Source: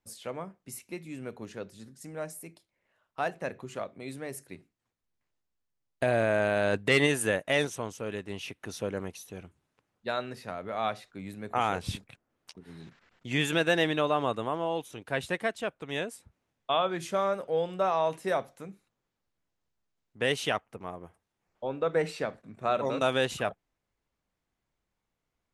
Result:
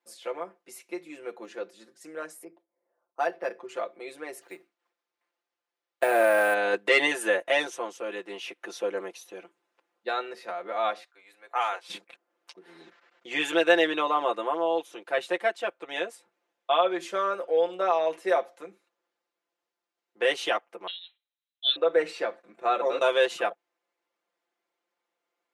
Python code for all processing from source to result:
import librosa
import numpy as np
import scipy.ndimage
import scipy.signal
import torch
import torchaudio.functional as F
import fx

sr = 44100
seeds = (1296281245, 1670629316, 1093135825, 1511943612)

y = fx.chain(x, sr, fx.env_lowpass(base_hz=660.0, full_db=-30.5),
    fx.resample_linear(factor=6), at=(2.44, 3.69))
y = fx.chain(y, sr, fx.peak_eq(hz=1300.0, db=3.5, octaves=2.3),
    fx.resample_bad(factor=4, down='none', up='hold'),
    fx.quant_float(bits=4), at=(4.41, 6.54))
y = fx.chain(y, sr, fx.highpass(hz=780.0, slope=12),
    fx.upward_expand(threshold_db=-40.0, expansion=1.5), at=(11.04, 11.9))
y = fx.chain(y, sr, fx.freq_invert(carrier_hz=4000),
    fx.band_widen(depth_pct=100), at=(20.87, 21.76))
y = scipy.signal.sosfilt(scipy.signal.butter(4, 340.0, 'highpass', fs=sr, output='sos'), y)
y = fx.high_shelf(y, sr, hz=6400.0, db=-11.0)
y = y + 0.89 * np.pad(y, (int(5.8 * sr / 1000.0), 0))[:len(y)]
y = y * librosa.db_to_amplitude(1.5)